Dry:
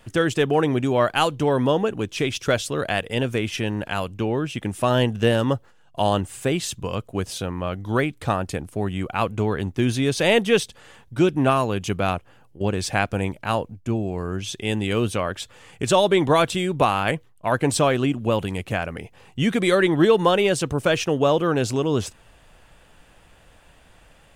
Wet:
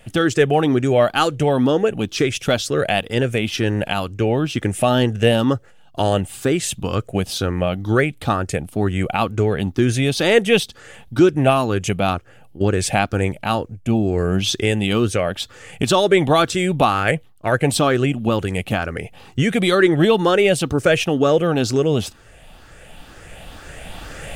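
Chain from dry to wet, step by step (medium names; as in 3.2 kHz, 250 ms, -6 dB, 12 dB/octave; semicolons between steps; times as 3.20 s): drifting ripple filter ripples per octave 0.5, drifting +2.1 Hz, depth 7 dB; recorder AGC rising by 7.4 dB/s; band-stop 1 kHz, Q 5.8; trim +3 dB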